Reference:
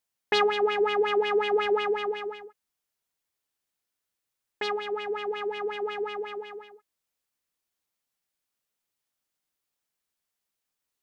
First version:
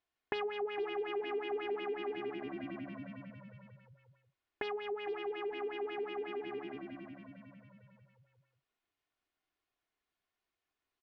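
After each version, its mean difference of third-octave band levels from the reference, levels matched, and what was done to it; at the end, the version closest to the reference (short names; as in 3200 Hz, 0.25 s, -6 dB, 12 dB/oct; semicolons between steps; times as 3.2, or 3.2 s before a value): 6.0 dB: LPF 2900 Hz 12 dB/oct; comb 2.8 ms, depth 46%; frequency-shifting echo 0.456 s, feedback 46%, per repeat -72 Hz, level -14 dB; compressor 4:1, threshold -39 dBFS, peak gain reduction 17.5 dB; gain +1 dB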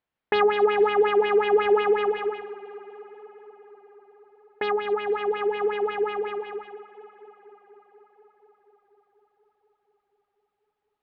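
2.5 dB: in parallel at -1 dB: limiter -21 dBFS, peak gain reduction 9.5 dB; on the sum: air absorption 420 m; tape echo 0.242 s, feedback 83%, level -17 dB, low-pass 3600 Hz; gain +1.5 dB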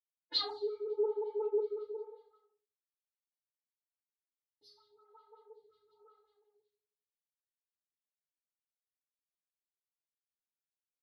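11.0 dB: spectral noise reduction 30 dB; EQ curve 110 Hz 0 dB, 210 Hz -10 dB, 330 Hz -8 dB, 2600 Hz -25 dB, 4100 Hz +8 dB, 6100 Hz -10 dB; FDN reverb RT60 0.59 s, low-frequency decay 1×, high-frequency decay 0.8×, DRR -8 dB; photocell phaser 1 Hz; gain -4.5 dB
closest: second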